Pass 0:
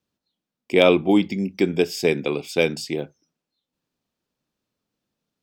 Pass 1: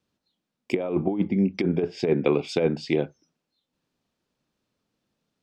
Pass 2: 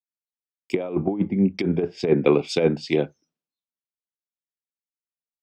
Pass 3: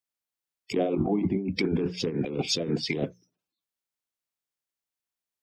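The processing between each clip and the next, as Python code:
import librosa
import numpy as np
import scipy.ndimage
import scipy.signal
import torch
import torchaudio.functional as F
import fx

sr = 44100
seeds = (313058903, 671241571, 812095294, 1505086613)

y1 = fx.env_lowpass_down(x, sr, base_hz=1200.0, full_db=-17.5)
y1 = fx.high_shelf(y1, sr, hz=11000.0, db=-11.5)
y1 = fx.over_compress(y1, sr, threshold_db=-20.0, ratio=-0.5)
y2 = fx.band_widen(y1, sr, depth_pct=100)
y2 = y2 * 10.0 ** (2.0 / 20.0)
y3 = fx.spec_quant(y2, sr, step_db=30)
y3 = fx.hum_notches(y3, sr, base_hz=60, count=3)
y3 = fx.over_compress(y3, sr, threshold_db=-27.0, ratio=-1.0)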